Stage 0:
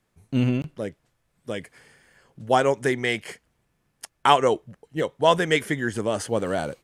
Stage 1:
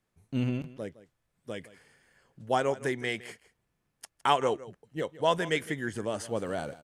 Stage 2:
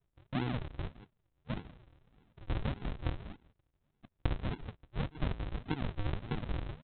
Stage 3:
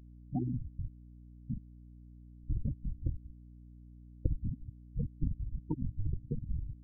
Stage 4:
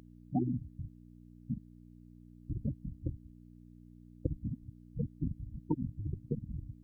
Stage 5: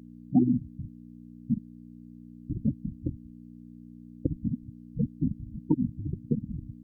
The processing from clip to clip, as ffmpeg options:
-af "aecho=1:1:162:0.133,volume=0.422"
-af "acompressor=threshold=0.0282:ratio=12,aresample=8000,acrusher=samples=26:mix=1:aa=0.000001:lfo=1:lforange=26:lforate=1.7,aresample=44100,volume=1.12"
-af "afftfilt=real='re*gte(hypot(re,im),0.0708)':imag='im*gte(hypot(re,im),0.0708)':win_size=1024:overlap=0.75,aeval=exprs='val(0)+0.00224*(sin(2*PI*60*n/s)+sin(2*PI*2*60*n/s)/2+sin(2*PI*3*60*n/s)/3+sin(2*PI*4*60*n/s)/4+sin(2*PI*5*60*n/s)/5)':c=same,volume=1.19"
-af "highpass=f=250:p=1,volume=2.11"
-af "equalizer=f=230:w=1.1:g=12"

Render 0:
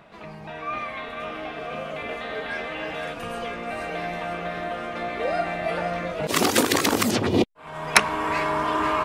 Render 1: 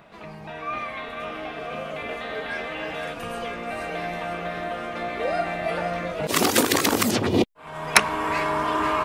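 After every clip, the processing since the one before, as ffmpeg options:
-af "highshelf=f=12000:g=6"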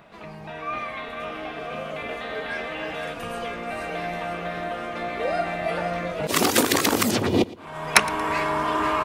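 -af "aecho=1:1:115|230|345:0.1|0.036|0.013"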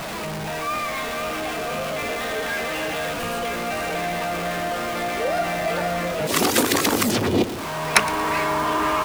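-af "aeval=exprs='val(0)+0.5*0.0596*sgn(val(0))':c=same,volume=0.891"

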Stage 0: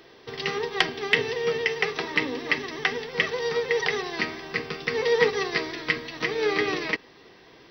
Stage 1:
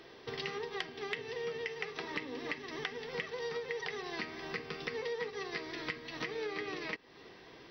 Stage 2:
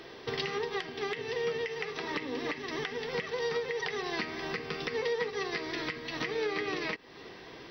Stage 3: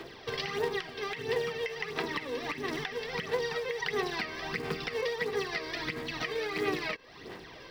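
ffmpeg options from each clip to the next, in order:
-af "highshelf=f=9200:g=-5.5,acompressor=threshold=0.02:ratio=6,volume=0.75"
-af "alimiter=level_in=1.41:limit=0.0631:level=0:latency=1:release=79,volume=0.708,volume=2.11"
-filter_complex "[0:a]aphaser=in_gain=1:out_gain=1:delay=1.9:decay=0.55:speed=1.5:type=sinusoidal,acrossover=split=310|1300[s0][s1][s2];[s0]acrusher=samples=28:mix=1:aa=0.000001:lfo=1:lforange=28:lforate=3.7[s3];[s3][s1][s2]amix=inputs=3:normalize=0,volume=0.891"

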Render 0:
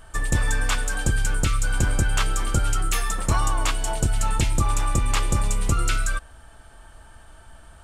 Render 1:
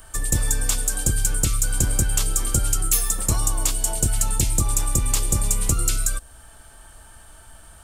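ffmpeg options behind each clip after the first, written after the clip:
-filter_complex "[0:a]aemphasis=mode=production:type=50fm,acrossover=split=240|650|3900[s0][s1][s2][s3];[s2]acompressor=threshold=0.0126:ratio=6[s4];[s0][s1][s4][s3]amix=inputs=4:normalize=0"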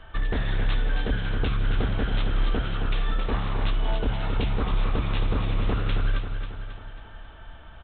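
-af "aresample=8000,aeval=exprs='0.0944*(abs(mod(val(0)/0.0944+3,4)-2)-1)':c=same,aresample=44100,aecho=1:1:271|542|813|1084|1355|1626|1897:0.422|0.232|0.128|0.0702|0.0386|0.0212|0.0117,volume=1.12"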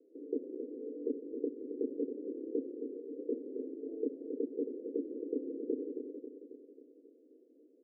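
-af "asuperpass=centerf=360:order=12:qfactor=1.5"

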